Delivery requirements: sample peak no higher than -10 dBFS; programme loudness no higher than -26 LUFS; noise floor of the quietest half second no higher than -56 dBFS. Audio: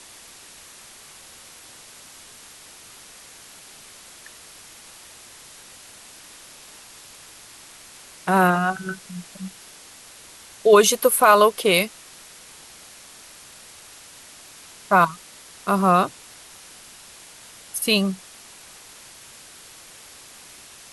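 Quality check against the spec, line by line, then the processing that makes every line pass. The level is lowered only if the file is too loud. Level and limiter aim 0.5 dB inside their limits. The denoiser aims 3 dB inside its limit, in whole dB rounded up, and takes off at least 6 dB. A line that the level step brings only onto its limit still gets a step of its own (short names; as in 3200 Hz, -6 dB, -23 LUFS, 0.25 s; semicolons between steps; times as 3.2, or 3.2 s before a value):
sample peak -4.0 dBFS: fail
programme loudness -19.0 LUFS: fail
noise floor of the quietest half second -45 dBFS: fail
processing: denoiser 7 dB, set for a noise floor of -45 dBFS; gain -7.5 dB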